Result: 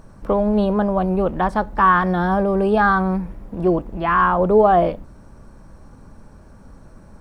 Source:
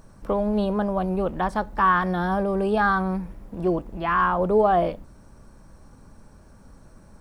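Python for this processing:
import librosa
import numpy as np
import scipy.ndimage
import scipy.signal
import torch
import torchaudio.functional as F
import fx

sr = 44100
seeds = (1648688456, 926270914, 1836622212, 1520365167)

y = fx.high_shelf(x, sr, hz=3400.0, db=-7.0)
y = y * 10.0 ** (5.5 / 20.0)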